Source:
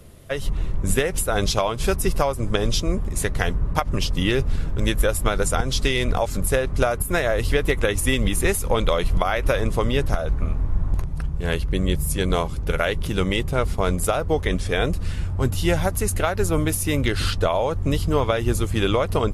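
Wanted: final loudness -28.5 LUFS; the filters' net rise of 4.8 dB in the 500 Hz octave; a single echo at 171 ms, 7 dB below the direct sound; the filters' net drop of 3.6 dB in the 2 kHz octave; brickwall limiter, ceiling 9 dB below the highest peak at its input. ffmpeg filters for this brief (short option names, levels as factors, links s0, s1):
-af "equalizer=f=500:t=o:g=6,equalizer=f=2000:t=o:g=-5,alimiter=limit=0.266:level=0:latency=1,aecho=1:1:171:0.447,volume=0.501"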